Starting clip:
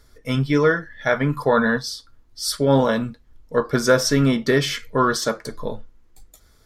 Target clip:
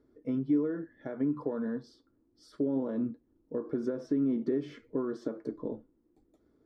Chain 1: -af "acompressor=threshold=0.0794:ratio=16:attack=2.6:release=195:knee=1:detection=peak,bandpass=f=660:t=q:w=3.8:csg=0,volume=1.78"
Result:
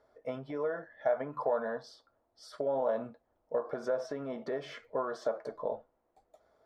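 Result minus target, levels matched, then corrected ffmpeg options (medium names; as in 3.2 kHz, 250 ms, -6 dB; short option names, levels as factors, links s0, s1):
250 Hz band -12.0 dB
-af "acompressor=threshold=0.0794:ratio=16:attack=2.6:release=195:knee=1:detection=peak,bandpass=f=310:t=q:w=3.8:csg=0,volume=1.78"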